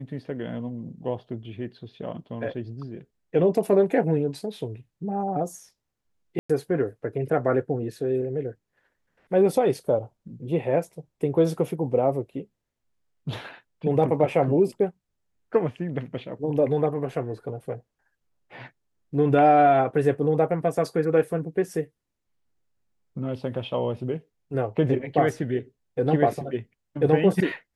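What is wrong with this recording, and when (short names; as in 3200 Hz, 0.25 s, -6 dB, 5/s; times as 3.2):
6.39–6.5 gap 0.105 s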